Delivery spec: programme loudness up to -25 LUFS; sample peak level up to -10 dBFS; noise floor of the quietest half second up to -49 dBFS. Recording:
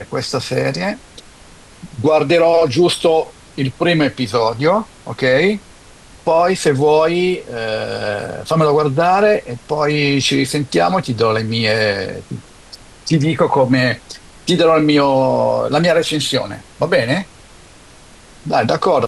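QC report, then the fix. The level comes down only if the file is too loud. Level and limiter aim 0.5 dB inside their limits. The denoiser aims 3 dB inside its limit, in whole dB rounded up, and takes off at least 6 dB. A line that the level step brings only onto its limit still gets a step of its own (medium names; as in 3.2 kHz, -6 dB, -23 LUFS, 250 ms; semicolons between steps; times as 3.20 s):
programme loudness -15.5 LUFS: fail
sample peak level -3.5 dBFS: fail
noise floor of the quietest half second -42 dBFS: fail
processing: trim -10 dB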